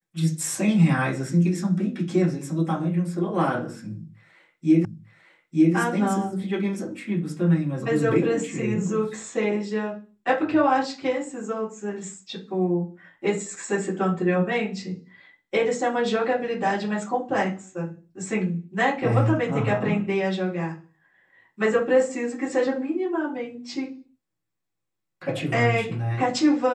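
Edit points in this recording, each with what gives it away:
0:04.85: the same again, the last 0.9 s

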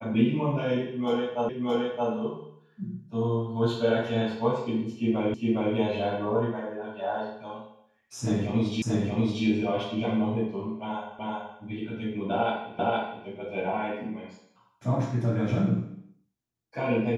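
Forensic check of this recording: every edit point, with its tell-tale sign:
0:01.49: the same again, the last 0.62 s
0:05.34: the same again, the last 0.41 s
0:08.82: the same again, the last 0.63 s
0:11.19: the same again, the last 0.38 s
0:12.79: the same again, the last 0.47 s

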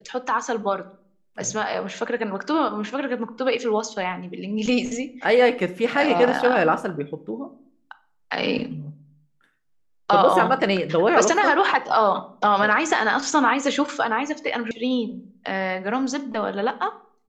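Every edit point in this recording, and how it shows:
0:14.71: cut off before it has died away

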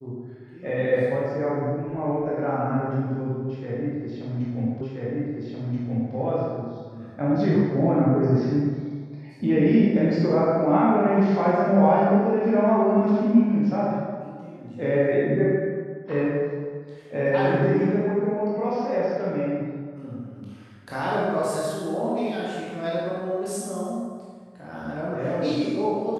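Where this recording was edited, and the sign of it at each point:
0:04.81: the same again, the last 1.33 s

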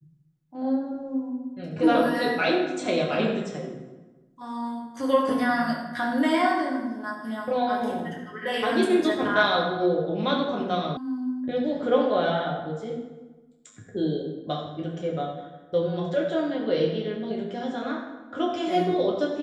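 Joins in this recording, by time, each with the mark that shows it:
0:10.97: cut off before it has died away

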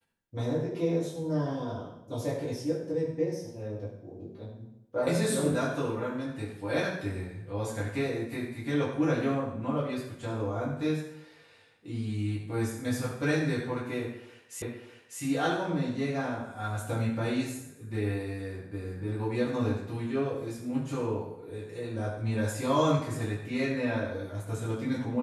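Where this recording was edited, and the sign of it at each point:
0:14.62: the same again, the last 0.6 s

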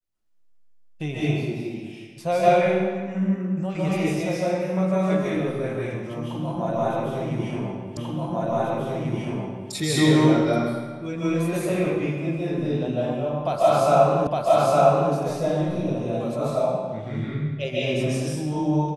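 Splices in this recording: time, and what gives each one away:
0:07.97: the same again, the last 1.74 s
0:14.27: the same again, the last 0.86 s

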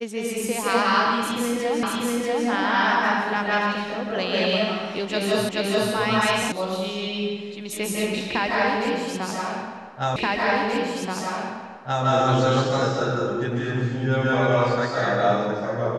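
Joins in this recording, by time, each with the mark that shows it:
0:01.83: the same again, the last 0.64 s
0:05.49: the same again, the last 0.43 s
0:06.52: cut off before it has died away
0:10.16: the same again, the last 1.88 s

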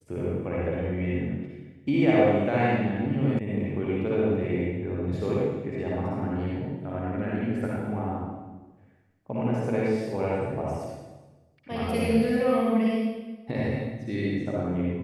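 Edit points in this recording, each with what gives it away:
0:03.39: cut off before it has died away

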